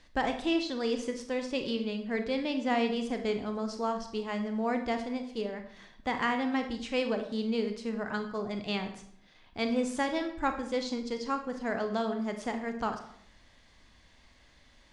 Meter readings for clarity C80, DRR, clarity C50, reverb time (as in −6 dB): 12.0 dB, 6.0 dB, 9.0 dB, 0.70 s